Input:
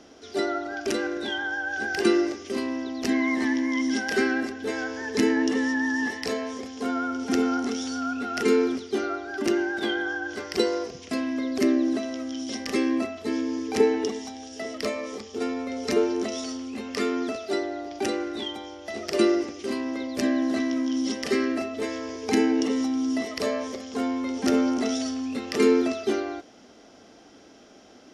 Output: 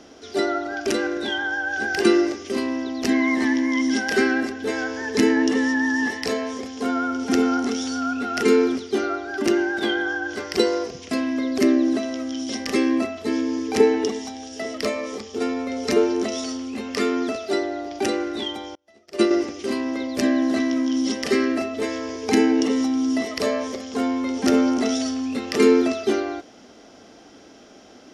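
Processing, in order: 18.75–19.31 s: upward expansion 2.5:1, over -40 dBFS; trim +4 dB

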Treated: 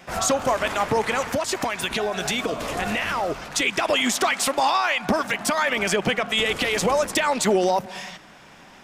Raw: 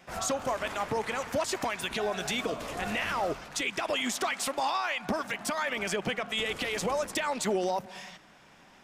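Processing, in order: 1.25–3.51 s: compression, threshold -30 dBFS, peak gain reduction 5.5 dB; trim +9 dB

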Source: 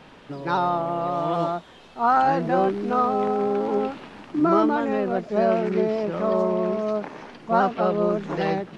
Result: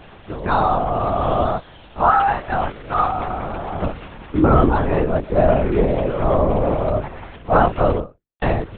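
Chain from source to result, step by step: 2.10–3.83 s: high-pass 800 Hz 12 dB/octave; 7.97–8.42 s: fade out exponential; LPC vocoder at 8 kHz whisper; trim +5.5 dB

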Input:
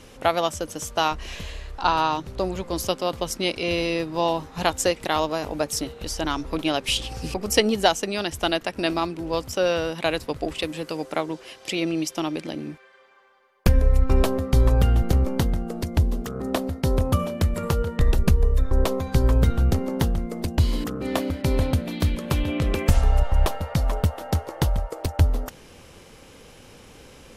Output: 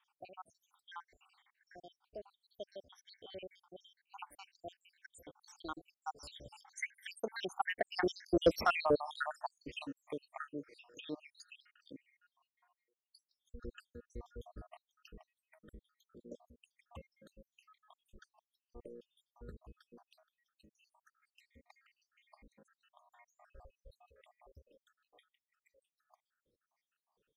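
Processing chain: random holes in the spectrogram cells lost 83%; Doppler pass-by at 8.51 s, 34 m/s, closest 6.8 m; overdrive pedal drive 16 dB, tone 1.4 kHz, clips at -17.5 dBFS; trim +4 dB

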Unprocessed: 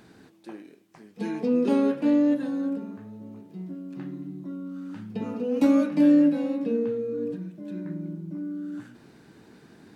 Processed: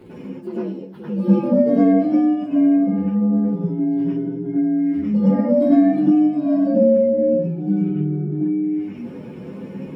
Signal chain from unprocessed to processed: frequency axis rescaled in octaves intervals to 125%; compression 2.5:1, threshold -44 dBFS, peak gain reduction 18.5 dB; reverberation RT60 0.15 s, pre-delay 94 ms, DRR -8 dB

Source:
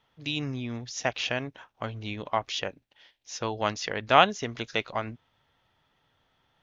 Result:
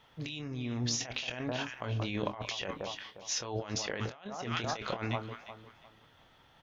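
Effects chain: on a send: echo whose repeats swap between lows and highs 177 ms, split 1.2 kHz, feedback 51%, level -13 dB; on the sum: compressor with a negative ratio -39 dBFS, ratio -1; doubling 25 ms -9.5 dB

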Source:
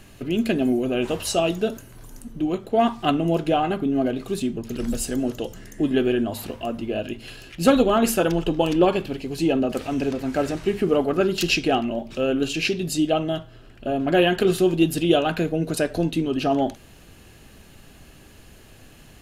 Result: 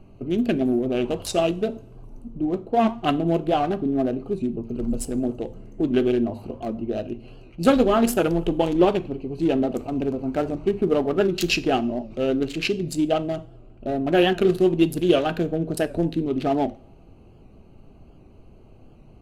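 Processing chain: local Wiener filter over 25 samples; two-slope reverb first 0.38 s, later 1.7 s, from -22 dB, DRR 13.5 dB; warped record 78 rpm, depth 100 cents

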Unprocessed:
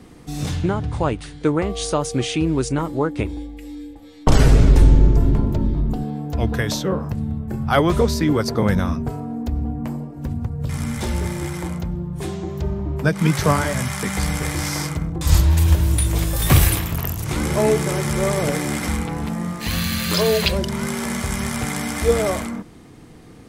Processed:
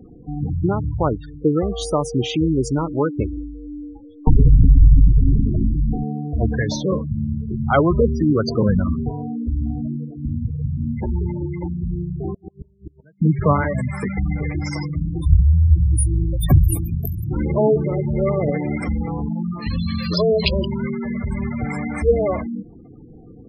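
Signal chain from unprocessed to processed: 12.30–13.22 s: inverted gate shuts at -17 dBFS, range -35 dB; spectral gate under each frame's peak -15 dB strong; trim +1.5 dB

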